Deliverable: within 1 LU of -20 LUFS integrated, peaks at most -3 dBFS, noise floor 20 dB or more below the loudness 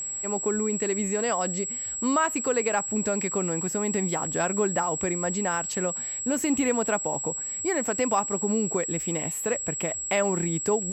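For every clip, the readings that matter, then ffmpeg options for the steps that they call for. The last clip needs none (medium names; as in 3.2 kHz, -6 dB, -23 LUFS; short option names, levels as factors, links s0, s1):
steady tone 7.7 kHz; tone level -30 dBFS; loudness -26.0 LUFS; peak level -12.0 dBFS; loudness target -20.0 LUFS
-> -af "bandreject=f=7700:w=30"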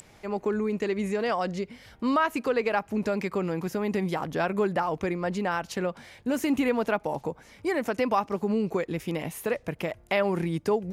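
steady tone not found; loudness -28.5 LUFS; peak level -13.0 dBFS; loudness target -20.0 LUFS
-> -af "volume=2.66"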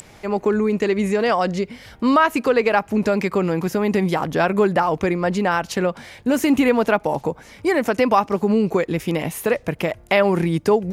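loudness -20.0 LUFS; peak level -4.5 dBFS; noise floor -47 dBFS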